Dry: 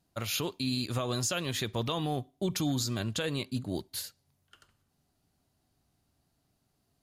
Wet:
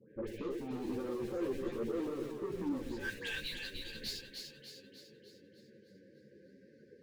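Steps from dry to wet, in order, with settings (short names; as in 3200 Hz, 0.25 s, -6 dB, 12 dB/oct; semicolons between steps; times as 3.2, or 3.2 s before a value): high shelf 3200 Hz -10.5 dB; band-pass sweep 370 Hz -> 5000 Hz, 2.66–3.41; bell 1200 Hz +10 dB 1.9 oct; band noise 120–1100 Hz -64 dBFS; in parallel at -10.5 dB: Schmitt trigger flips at -46.5 dBFS; on the sum: brick-wall FIR band-stop 570–1500 Hz; notches 60/120/180/240/300 Hz; limiter -34 dBFS, peak gain reduction 10 dB; dispersion highs, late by 0.111 s, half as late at 1400 Hz; soft clip -40 dBFS, distortion -13 dB; on a send: split-band echo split 620 Hz, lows 0.1 s, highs 0.3 s, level -5 dB; on the sum: ensemble effect; gain +9.5 dB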